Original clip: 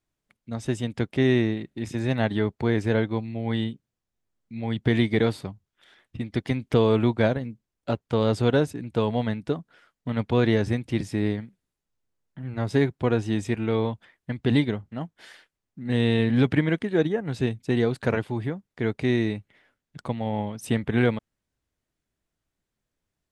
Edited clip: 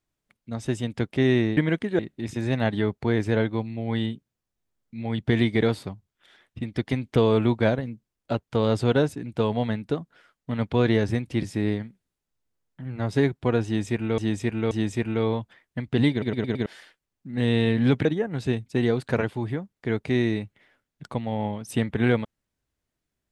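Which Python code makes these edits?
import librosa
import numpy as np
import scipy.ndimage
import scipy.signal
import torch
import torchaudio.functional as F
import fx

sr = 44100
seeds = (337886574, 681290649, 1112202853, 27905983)

y = fx.edit(x, sr, fx.repeat(start_s=13.23, length_s=0.53, count=3),
    fx.stutter_over(start_s=14.63, slice_s=0.11, count=5),
    fx.move(start_s=16.57, length_s=0.42, to_s=1.57), tone=tone)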